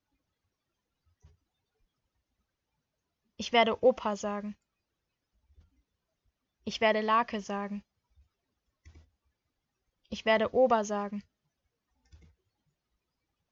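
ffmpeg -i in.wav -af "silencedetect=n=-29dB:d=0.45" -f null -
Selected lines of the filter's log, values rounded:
silence_start: 0.00
silence_end: 3.40 | silence_duration: 3.40
silence_start: 4.40
silence_end: 6.67 | silence_duration: 2.28
silence_start: 7.66
silence_end: 10.13 | silence_duration: 2.46
silence_start: 11.07
silence_end: 13.51 | silence_duration: 2.44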